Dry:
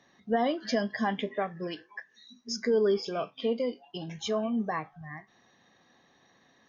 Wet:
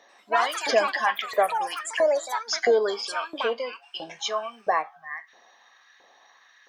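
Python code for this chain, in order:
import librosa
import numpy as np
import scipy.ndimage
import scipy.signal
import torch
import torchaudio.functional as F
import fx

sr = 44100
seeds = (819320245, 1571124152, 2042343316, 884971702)

y = fx.echo_pitch(x, sr, ms=92, semitones=6, count=3, db_per_echo=-6.0)
y = fx.filter_lfo_highpass(y, sr, shape='saw_up', hz=1.5, low_hz=520.0, high_hz=1800.0, q=1.6)
y = y * 10.0 ** (6.5 / 20.0)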